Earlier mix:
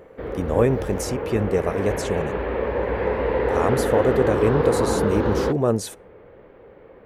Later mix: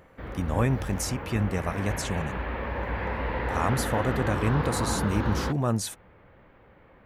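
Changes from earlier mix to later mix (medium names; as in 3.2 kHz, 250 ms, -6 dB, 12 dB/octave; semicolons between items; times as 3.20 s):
background: send off; master: add peaking EQ 440 Hz -14.5 dB 0.95 oct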